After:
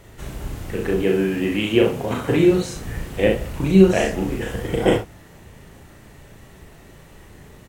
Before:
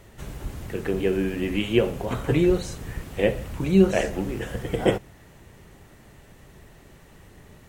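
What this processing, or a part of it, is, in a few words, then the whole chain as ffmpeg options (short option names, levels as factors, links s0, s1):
slapback doubling: -filter_complex "[0:a]asplit=3[s0][s1][s2];[s1]adelay=37,volume=0.708[s3];[s2]adelay=65,volume=0.447[s4];[s0][s3][s4]amix=inputs=3:normalize=0,asettb=1/sr,asplit=3[s5][s6][s7];[s5]atrim=end=1.024[s8];[s6]atrim=start=1.02:end=2.76,asetpts=PTS-STARTPTS,afade=t=in:d=0.004:c=qsin,afade=t=out:st=1.736:d=0.004:c=qsin,highpass=100[s9];[s7]atrim=start=2.756[s10];[s8][s9]acrossfade=d=0.004:c1=hsin:c2=qsin[s11];[s11][s10]acrossfade=d=0.004:c1=qsin:c2=hsin,volume=1.33"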